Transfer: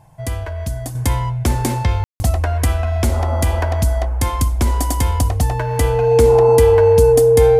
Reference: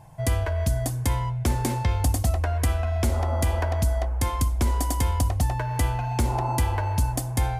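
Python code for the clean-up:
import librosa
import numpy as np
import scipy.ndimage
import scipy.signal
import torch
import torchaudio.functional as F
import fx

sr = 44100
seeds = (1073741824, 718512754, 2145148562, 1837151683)

y = fx.notch(x, sr, hz=460.0, q=30.0)
y = fx.fix_ambience(y, sr, seeds[0], print_start_s=0.0, print_end_s=0.5, start_s=2.04, end_s=2.2)
y = fx.gain(y, sr, db=fx.steps((0.0, 0.0), (0.95, -6.5)))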